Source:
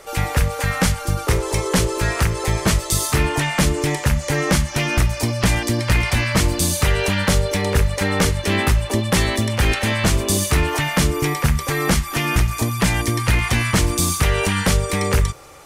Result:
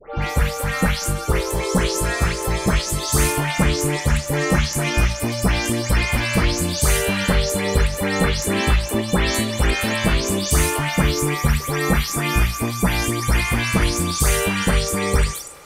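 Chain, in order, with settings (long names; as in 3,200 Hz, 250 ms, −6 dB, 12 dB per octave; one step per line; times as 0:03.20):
every frequency bin delayed by itself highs late, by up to 221 ms
feedback echo with a high-pass in the loop 193 ms, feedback 56%, level −23 dB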